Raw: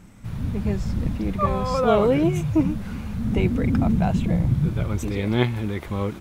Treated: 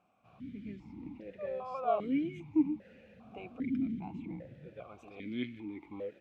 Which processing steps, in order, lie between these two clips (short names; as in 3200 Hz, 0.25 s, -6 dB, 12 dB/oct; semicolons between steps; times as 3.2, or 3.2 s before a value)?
vowel sequencer 2.5 Hz; gain -5 dB